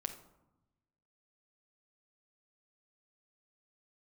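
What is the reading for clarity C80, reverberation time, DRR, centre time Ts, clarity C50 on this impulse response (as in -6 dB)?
13.0 dB, 0.95 s, 4.5 dB, 12 ms, 10.0 dB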